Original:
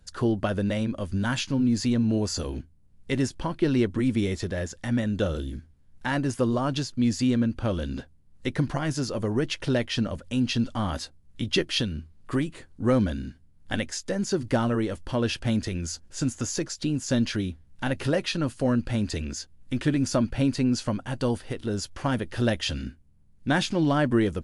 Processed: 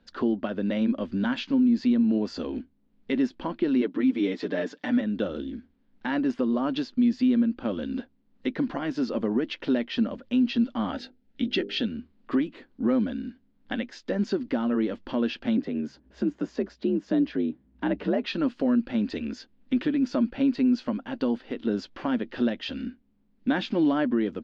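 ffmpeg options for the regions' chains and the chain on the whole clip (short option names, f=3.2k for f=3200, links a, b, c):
-filter_complex "[0:a]asettb=1/sr,asplit=3[a][b][c];[a]atrim=end=3.814[d];[b]atrim=start=3.81:end=5.01,asetpts=PTS-STARTPTS,afade=t=in:d=0.004:c=qsin,afade=t=out:st=1.196:d=0.004:c=qsin,highpass=180,aecho=1:1:6.8:0.94,atrim=end_sample=52920[e];[c]atrim=start=5.006[f];[d][e]acrossfade=d=0.004:c1=hsin:c2=qsin[g];[g][f]acrossfade=d=0.004:c1=qsin:c2=hsin,asettb=1/sr,asplit=3[h][i][j];[h]atrim=end=10.924[k];[i]atrim=start=10.92:end=11.86,asetpts=PTS-STARTPTS,afade=t=in:d=0.004:c=qsin,afade=t=out:st=0.936:d=0.004:c=qsin,asuperstop=centerf=1100:order=20:qfactor=3.6,bandreject=f=50:t=h:w=6,bandreject=f=100:t=h:w=6,bandreject=f=150:t=h:w=6,bandreject=f=200:t=h:w=6,bandreject=f=250:t=h:w=6,bandreject=f=300:t=h:w=6,bandreject=f=350:t=h:w=6,bandreject=f=400:t=h:w=6,bandreject=f=450:t=h:w=6,bandreject=f=500:t=h:w=6[l];[j]atrim=start=11.856[m];[k][l]acrossfade=d=0.004:c1=hsin:c2=qsin[n];[n][m]acrossfade=d=0.004:c1=qsin:c2=hsin,asettb=1/sr,asplit=3[o][p][q];[o]atrim=end=15.574[r];[p]atrim=start=15.57:end=18.25,asetpts=PTS-STARTPTS,afade=t=in:d=0.004:c=qsin,afade=t=out:st=2.676:d=0.004:c=qsin,highshelf=f=2.1k:g=-11,afreqshift=56[s];[q]atrim=start=18.246[t];[r][s]acrossfade=d=0.004:c1=hsin:c2=qsin[u];[u][t]acrossfade=d=0.004:c1=qsin:c2=hsin,lowpass=f=4.1k:w=0.5412,lowpass=f=4.1k:w=1.3066,lowshelf=f=170:t=q:w=3:g=-11,alimiter=limit=-15.5dB:level=0:latency=1:release=497"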